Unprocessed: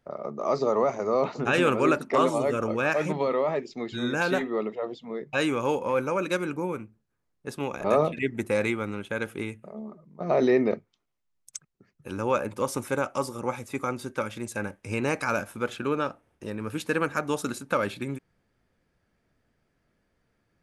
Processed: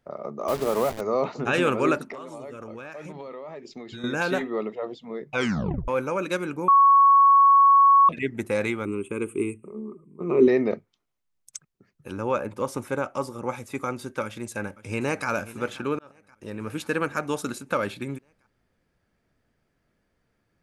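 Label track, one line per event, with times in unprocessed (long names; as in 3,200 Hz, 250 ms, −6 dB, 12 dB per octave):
0.480000	1.010000	hold until the input has moved step −29.5 dBFS
2.110000	4.040000	downward compressor 16 to 1, threshold −34 dBFS
5.330000	5.330000	tape stop 0.55 s
6.680000	8.090000	beep over 1,110 Hz −12 dBFS
8.850000	10.480000	drawn EQ curve 180 Hz 0 dB, 400 Hz +11 dB, 650 Hz −19 dB, 1,100 Hz +2 dB, 1,700 Hz −15 dB, 2,500 Hz +3 dB, 5,000 Hz −27 dB, 8,500 Hz +14 dB, 12,000 Hz −6 dB
12.120000	13.490000	high-shelf EQ 3,000 Hz −6 dB
14.230000	15.280000	delay throw 530 ms, feedback 60%, level −16.5 dB
15.990000	16.620000	fade in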